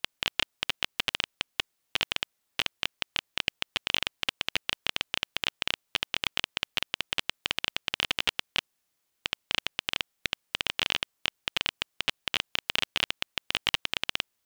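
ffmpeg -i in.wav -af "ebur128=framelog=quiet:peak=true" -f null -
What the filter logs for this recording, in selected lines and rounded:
Integrated loudness:
  I:         -30.7 LUFS
  Threshold: -40.7 LUFS
Loudness range:
  LRA:         1.4 LU
  Threshold: -50.9 LUFS
  LRA low:   -31.6 LUFS
  LRA high:  -30.2 LUFS
True peak:
  Peak:       -3.8 dBFS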